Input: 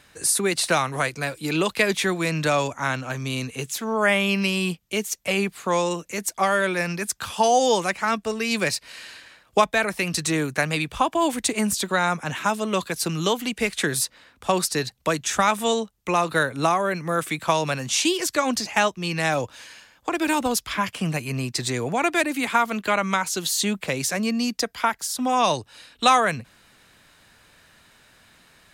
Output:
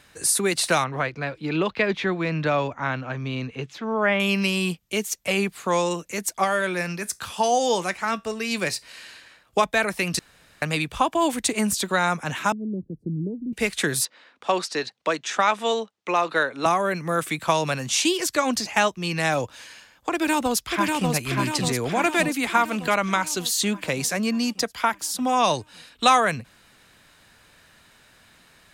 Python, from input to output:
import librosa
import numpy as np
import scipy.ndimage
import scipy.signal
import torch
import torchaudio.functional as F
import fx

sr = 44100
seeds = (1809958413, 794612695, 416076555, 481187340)

y = fx.air_absorb(x, sr, metres=250.0, at=(0.84, 4.2))
y = fx.comb_fb(y, sr, f0_hz=60.0, decay_s=0.22, harmonics='all', damping=0.0, mix_pct=40, at=(6.44, 9.64))
y = fx.cheby2_lowpass(y, sr, hz=1100.0, order=4, stop_db=60, at=(12.52, 13.53))
y = fx.bandpass_edges(y, sr, low_hz=310.0, high_hz=4800.0, at=(14.05, 16.66))
y = fx.echo_throw(y, sr, start_s=20.12, length_s=0.98, ms=590, feedback_pct=60, wet_db=-3.0)
y = fx.edit(y, sr, fx.room_tone_fill(start_s=10.19, length_s=0.43), tone=tone)